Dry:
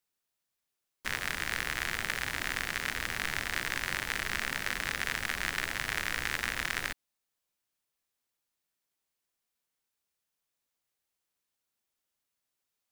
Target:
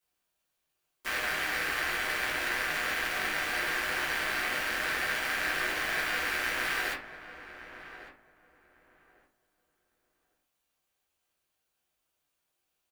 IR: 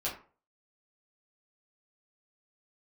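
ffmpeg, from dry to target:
-filter_complex "[0:a]aeval=exprs='0.266*(cos(1*acos(clip(val(0)/0.266,-1,1)))-cos(1*PI/2))+0.0596*(cos(5*acos(clip(val(0)/0.266,-1,1)))-cos(5*PI/2))':c=same,acrossover=split=250|4300[a][b][c];[a]alimiter=level_in=25.5dB:limit=-24dB:level=0:latency=1,volume=-25.5dB[d];[d][b][c]amix=inputs=3:normalize=0,equalizer=f=4.6k:t=o:w=0.77:g=-2.5,asplit=2[e][f];[f]adelay=1151,lowpass=f=1.2k:p=1,volume=-11dB,asplit=2[g][h];[h]adelay=1151,lowpass=f=1.2k:p=1,volume=0.22,asplit=2[i][j];[j]adelay=1151,lowpass=f=1.2k:p=1,volume=0.22[k];[e][g][i][k]amix=inputs=4:normalize=0[l];[1:a]atrim=start_sample=2205[m];[l][m]afir=irnorm=-1:irlink=0,volume=-4dB"

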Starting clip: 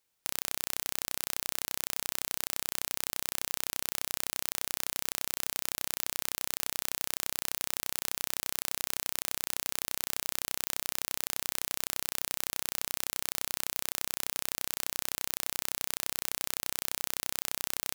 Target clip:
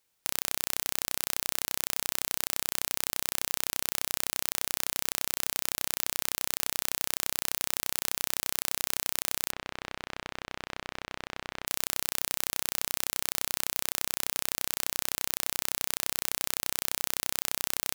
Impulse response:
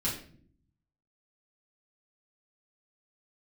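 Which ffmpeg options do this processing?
-filter_complex "[0:a]asplit=3[a][b][c];[a]afade=t=out:st=9.5:d=0.02[d];[b]lowpass=2.5k,afade=t=in:st=9.5:d=0.02,afade=t=out:st=11.66:d=0.02[e];[c]afade=t=in:st=11.66:d=0.02[f];[d][e][f]amix=inputs=3:normalize=0,volume=3dB"

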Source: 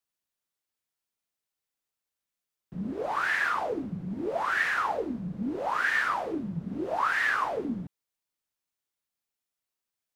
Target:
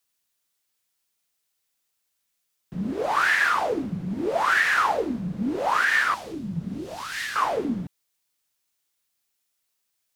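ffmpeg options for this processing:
-filter_complex "[0:a]highshelf=f=2k:g=7.5,alimiter=limit=-16dB:level=0:latency=1:release=224,asettb=1/sr,asplit=3[a][b][c];[a]atrim=end=6.144[d];[b]atrim=start=6.14:end=7.36,asetpts=PTS-STARTPTS,afade=t=in:d=0.004:c=qsin,afade=t=out:st=1.216:d=0.004:c=qsin,acrossover=split=230|3000[e][f][g];[f]acompressor=threshold=-46dB:ratio=3[h];[e][h][g]amix=inputs=3:normalize=0[i];[c]atrim=start=7.356[j];[d][i]acrossfade=d=0.004:c1=hsin:c2=qsin[k];[k][j]acrossfade=d=0.004:c1=qsin:c2=hsin,volume=5dB"

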